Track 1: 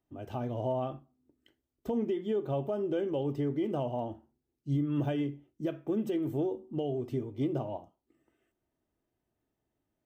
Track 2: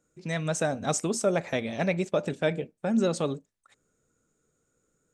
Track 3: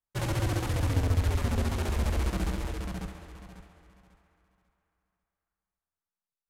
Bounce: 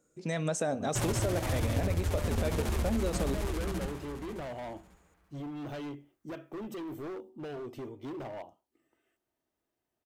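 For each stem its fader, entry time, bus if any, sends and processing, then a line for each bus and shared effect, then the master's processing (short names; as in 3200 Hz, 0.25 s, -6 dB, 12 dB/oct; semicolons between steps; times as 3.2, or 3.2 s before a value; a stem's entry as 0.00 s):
+1.5 dB, 0.65 s, no send, low shelf 320 Hz -11 dB; hard clip -38.5 dBFS, distortion -8 dB
-3.5 dB, 0.00 s, no send, high shelf 4800 Hz +7 dB; limiter -21.5 dBFS, peak gain reduction 9 dB; bell 460 Hz +7 dB 2.6 oct
+0.5 dB, 0.80 s, no send, high shelf 7300 Hz +6 dB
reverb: off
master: compressor, threshold -26 dBFS, peak gain reduction 7.5 dB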